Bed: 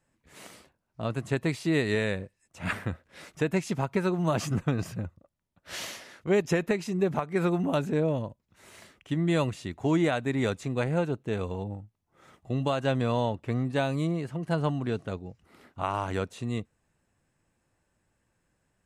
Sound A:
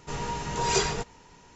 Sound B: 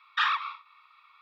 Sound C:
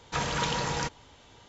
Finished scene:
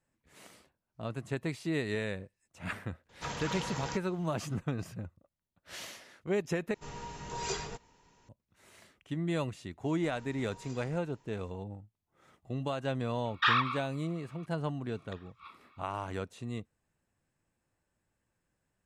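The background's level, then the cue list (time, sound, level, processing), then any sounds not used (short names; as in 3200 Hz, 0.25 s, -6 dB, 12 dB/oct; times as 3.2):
bed -7 dB
3.09 add C -8.5 dB
6.74 replace with A -11 dB
9.95 add A -14 dB + compressor 3:1, threshold -40 dBFS
13.25 add B -0.5 dB
14.95 add B -6.5 dB + flipped gate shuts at -24 dBFS, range -30 dB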